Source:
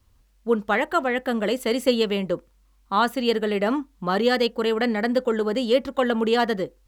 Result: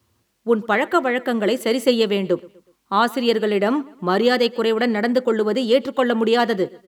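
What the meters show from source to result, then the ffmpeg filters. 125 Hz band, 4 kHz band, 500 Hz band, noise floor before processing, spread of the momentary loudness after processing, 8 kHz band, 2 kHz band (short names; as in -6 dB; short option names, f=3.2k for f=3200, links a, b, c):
+3.0 dB, +3.0 dB, +4.0 dB, -60 dBFS, 4 LU, +3.0 dB, +3.0 dB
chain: -filter_complex "[0:a]highpass=f=99:w=0.5412,highpass=f=99:w=1.3066,equalizer=f=360:t=o:w=0.2:g=8,asplit=2[a][b];[b]aecho=0:1:123|246|369:0.0708|0.0297|0.0125[c];[a][c]amix=inputs=2:normalize=0,volume=3dB"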